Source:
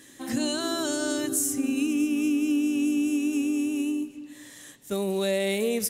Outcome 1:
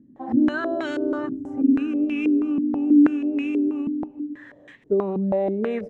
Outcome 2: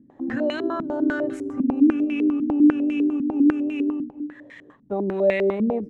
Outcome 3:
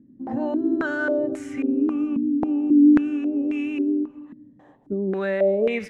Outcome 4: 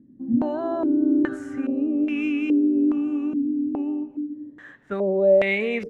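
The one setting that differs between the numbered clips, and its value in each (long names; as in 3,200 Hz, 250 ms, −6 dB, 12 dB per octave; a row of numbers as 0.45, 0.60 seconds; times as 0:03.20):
low-pass on a step sequencer, speed: 6.2, 10, 3.7, 2.4 Hertz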